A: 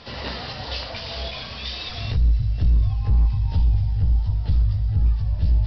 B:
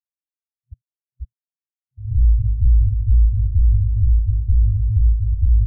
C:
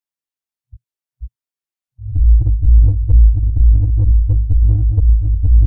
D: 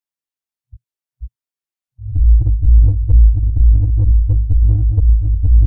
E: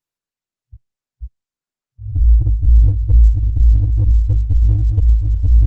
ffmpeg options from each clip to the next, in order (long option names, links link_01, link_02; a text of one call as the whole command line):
ffmpeg -i in.wav -af "afftfilt=real='re*gte(hypot(re,im),0.355)':imag='im*gte(hypot(re,im),0.355)':win_size=1024:overlap=0.75,lowpass=1500,afftfilt=real='re*(1-between(b*sr/4096,120,640))':imag='im*(1-between(b*sr/4096,120,640))':win_size=4096:overlap=0.75,volume=4dB" out.wav
ffmpeg -i in.wav -filter_complex "[0:a]flanger=delay=18:depth=4.4:speed=2.5,acrossover=split=110|120[link_01][link_02][link_03];[link_02]acrusher=bits=4:mix=0:aa=0.5[link_04];[link_01][link_04][link_03]amix=inputs=3:normalize=0,volume=6dB" out.wav
ffmpeg -i in.wav -af anull out.wav
ffmpeg -i in.wav -af "volume=-1dB" -ar 48000 -c:a libopus -b:a 24k out.opus